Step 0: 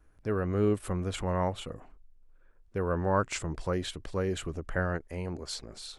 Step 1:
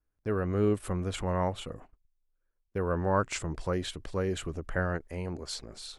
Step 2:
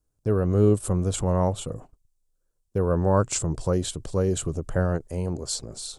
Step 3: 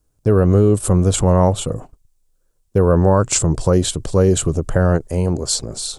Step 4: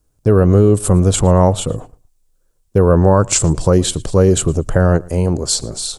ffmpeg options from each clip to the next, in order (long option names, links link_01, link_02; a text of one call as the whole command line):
ffmpeg -i in.wav -af "agate=range=-19dB:threshold=-48dB:ratio=16:detection=peak" out.wav
ffmpeg -i in.wav -af "equalizer=frequency=125:width_type=o:width=1:gain=8,equalizer=frequency=500:width_type=o:width=1:gain=3,equalizer=frequency=2000:width_type=o:width=1:gain=-11,equalizer=frequency=8000:width_type=o:width=1:gain=10,volume=4dB" out.wav
ffmpeg -i in.wav -af "alimiter=level_in=13dB:limit=-1dB:release=50:level=0:latency=1,volume=-3dB" out.wav
ffmpeg -i in.wav -af "aecho=1:1:113|226:0.0631|0.0133,volume=2.5dB" out.wav